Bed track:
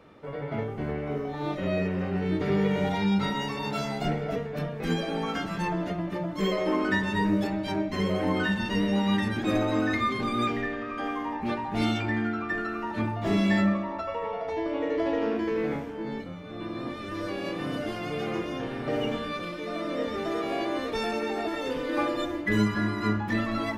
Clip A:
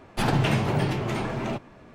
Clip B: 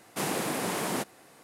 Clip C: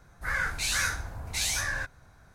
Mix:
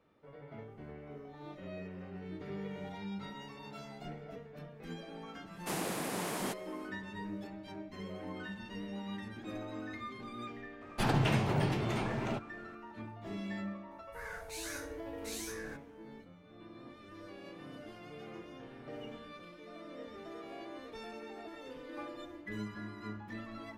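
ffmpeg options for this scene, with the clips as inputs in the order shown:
-filter_complex "[0:a]volume=-17dB[a];[3:a]highshelf=f=11k:g=11.5[b];[2:a]atrim=end=1.43,asetpts=PTS-STARTPTS,volume=-6.5dB,afade=t=in:d=0.1,afade=t=out:st=1.33:d=0.1,adelay=5500[c];[1:a]atrim=end=1.94,asetpts=PTS-STARTPTS,volume=-6.5dB,afade=t=in:d=0.004:c=hsin,afade=t=out:st=1.936:d=0.004:c=hsin,adelay=10810[d];[b]atrim=end=2.34,asetpts=PTS-STARTPTS,volume=-17dB,afade=t=in:d=0.004:c=hsin,afade=t=out:st=2.336:d=0.004:c=hsin,adelay=13910[e];[a][c][d][e]amix=inputs=4:normalize=0"

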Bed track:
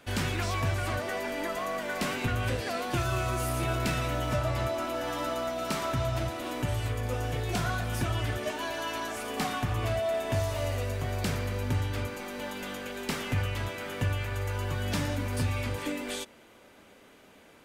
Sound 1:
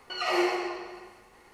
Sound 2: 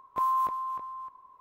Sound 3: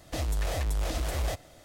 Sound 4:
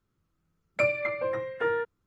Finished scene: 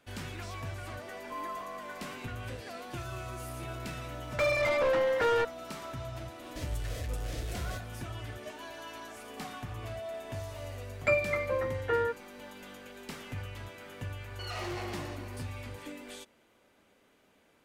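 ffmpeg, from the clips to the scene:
-filter_complex "[4:a]asplit=2[a][b];[0:a]volume=-10.5dB[c];[a]asplit=2[d][e];[e]highpass=f=720:p=1,volume=32dB,asoftclip=type=tanh:threshold=-13dB[f];[d][f]amix=inputs=2:normalize=0,lowpass=f=1.4k:p=1,volume=-6dB[g];[3:a]asuperstop=centerf=920:order=4:qfactor=1.2[h];[1:a]asoftclip=type=tanh:threshold=-31dB[i];[2:a]atrim=end=1.4,asetpts=PTS-STARTPTS,volume=-13.5dB,afade=t=in:d=0.004:c=hsin,afade=t=out:st=1.396:d=0.004:c=hsin,adelay=1140[j];[g]atrim=end=2.06,asetpts=PTS-STARTPTS,volume=-6dB,afade=t=in:d=0.004:c=hsin,afade=t=out:st=2.056:d=0.004:c=hsin,adelay=3600[k];[h]atrim=end=1.64,asetpts=PTS-STARTPTS,volume=-7.5dB,afade=t=in:d=0.004:c=hsin,afade=t=out:st=1.636:d=0.004:c=hsin,adelay=6430[l];[b]atrim=end=2.06,asetpts=PTS-STARTPTS,volume=-1.5dB,afade=t=in:d=0.004:c=hsin,afade=t=out:st=2.056:d=0.004:c=hsin,adelay=10280[m];[i]atrim=end=1.53,asetpts=PTS-STARTPTS,volume=-5dB,afade=t=in:d=0.004:c=hsin,afade=t=out:st=1.526:d=0.004:c=hsin,adelay=14290[n];[c][j][k][l][m][n]amix=inputs=6:normalize=0"

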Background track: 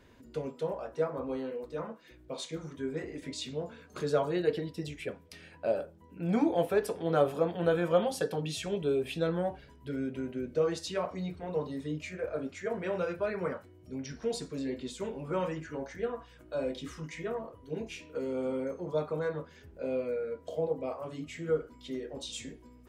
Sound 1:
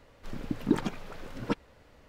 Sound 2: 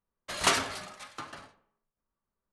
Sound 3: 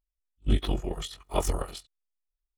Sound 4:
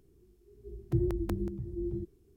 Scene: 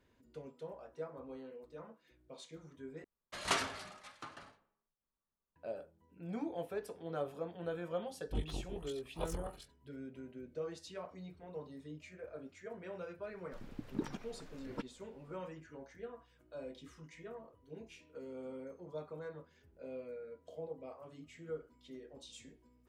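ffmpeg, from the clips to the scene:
-filter_complex "[0:a]volume=-13dB[a];[2:a]highshelf=f=7k:g=-6[b];[a]asplit=2[c][d];[c]atrim=end=3.044[e];[b]atrim=end=2.52,asetpts=PTS-STARTPTS,volume=-7.5dB[f];[d]atrim=start=5.556[g];[3:a]atrim=end=2.57,asetpts=PTS-STARTPTS,volume=-14dB,afade=t=in:d=0.004:c=hsin,afade=t=out:st=2.566:d=0.004:c=hsin,adelay=7850[h];[1:a]atrim=end=2.08,asetpts=PTS-STARTPTS,volume=-12.5dB,afade=t=in:d=0.004:c=hsin,afade=t=out:st=2.076:d=0.004:c=hsin,adelay=13280[i];[e][f]acrossfade=d=0.004:c1=hsin:c2=hsin[j];[j][g]acrossfade=d=0.004:c1=hsin:c2=hsin[k];[k][h][i]amix=inputs=3:normalize=0"

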